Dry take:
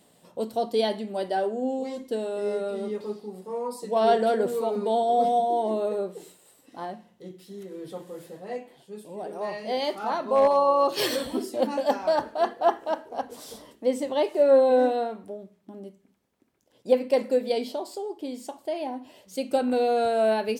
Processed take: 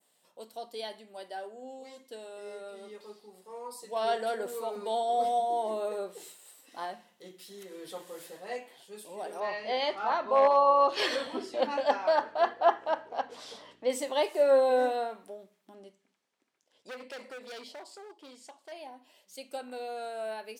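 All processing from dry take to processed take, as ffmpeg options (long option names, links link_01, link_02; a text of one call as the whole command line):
ffmpeg -i in.wav -filter_complex "[0:a]asettb=1/sr,asplit=3[link_01][link_02][link_03];[link_01]atrim=end=9.404[link_04];[link_02]atrim=start=9.4:end=13.9,asetpts=PTS-STARTPTS,afade=type=in:duration=0.004:curve=qsin,afade=type=out:start_time=4.496:duration=0.004:curve=qsin,aeval=exprs='val(0)+0.00355*(sin(2*PI*60*n/s)+sin(2*PI*2*60*n/s)/2+sin(2*PI*3*60*n/s)/3+sin(2*PI*4*60*n/s)/4+sin(2*PI*5*60*n/s)/5)':channel_layout=same,highpass=110,lowpass=3800[link_05];[link_03]atrim=start=13.896[link_06];[link_04][link_05]acrossfade=duration=0.004:curve1=hsin:curve2=qsin[link_07];[link_07][link_06]acrossfade=duration=0.004:curve1=qsin:curve2=hsin,asettb=1/sr,asplit=3[link_08][link_09][link_10];[link_08]atrim=end=15.744[link_11];[link_09]atrim=start=15.74:end=18.72,asetpts=PTS-STARTPTS,afade=type=in:duration=0.004:curve=qsin,afade=type=out:start_time=2.976:duration=0.004:curve=qsin,lowpass=7800,acompressor=threshold=-25dB:ratio=2:attack=3.2:release=140:knee=1:detection=peak,asoftclip=type=hard:threshold=-30dB[link_12];[link_10]atrim=start=18.716[link_13];[link_11][link_12]acrossfade=duration=0.004:curve1=hsin:curve2=qsin[link_14];[link_14][link_13]acrossfade=duration=0.004:curve1=qsin:curve2=hsin,highpass=frequency=1400:poles=1,adynamicequalizer=threshold=0.00316:dfrequency=3800:dqfactor=0.8:tfrequency=3800:tqfactor=0.8:attack=5:release=100:ratio=0.375:range=2.5:mode=cutabove:tftype=bell,dynaudnorm=framelen=320:gausssize=31:maxgain=12dB,volume=-6.5dB" out.wav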